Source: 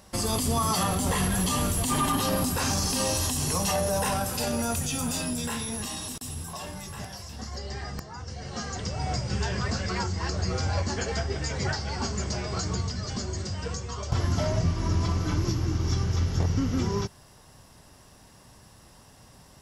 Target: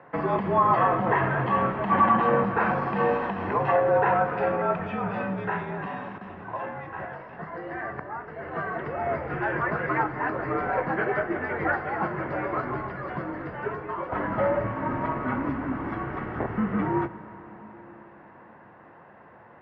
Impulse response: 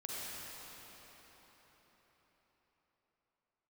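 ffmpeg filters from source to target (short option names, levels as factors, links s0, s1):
-filter_complex "[0:a]highpass=f=150:t=q:w=0.5412,highpass=f=150:t=q:w=1.307,lowpass=f=2000:t=q:w=0.5176,lowpass=f=2000:t=q:w=0.7071,lowpass=f=2000:t=q:w=1.932,afreqshift=-55,aemphasis=mode=production:type=bsi,bandreject=f=60:t=h:w=6,bandreject=f=120:t=h:w=6,bandreject=f=180:t=h:w=6,asplit=2[s0][s1];[1:a]atrim=start_sample=2205[s2];[s1][s2]afir=irnorm=-1:irlink=0,volume=0.224[s3];[s0][s3]amix=inputs=2:normalize=0,volume=2.24"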